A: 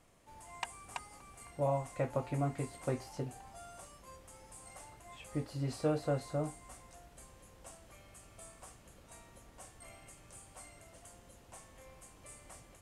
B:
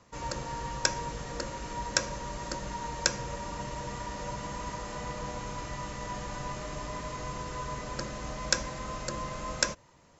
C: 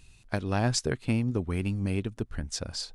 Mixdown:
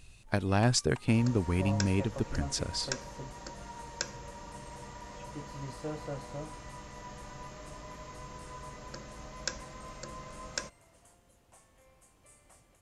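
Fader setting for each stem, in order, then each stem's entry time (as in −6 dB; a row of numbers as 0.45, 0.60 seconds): −6.5, −8.5, +0.5 decibels; 0.00, 0.95, 0.00 seconds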